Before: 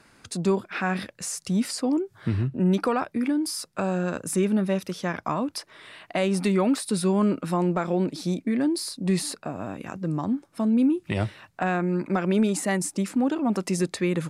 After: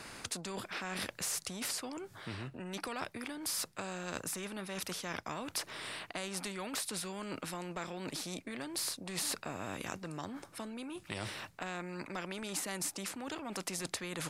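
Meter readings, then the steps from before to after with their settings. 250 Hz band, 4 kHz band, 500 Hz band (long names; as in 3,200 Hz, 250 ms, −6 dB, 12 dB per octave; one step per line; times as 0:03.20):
−20.0 dB, −3.5 dB, −16.5 dB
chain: reversed playback
downward compressor, threshold −31 dBFS, peak gain reduction 13 dB
reversed playback
every bin compressed towards the loudest bin 2 to 1
level +1 dB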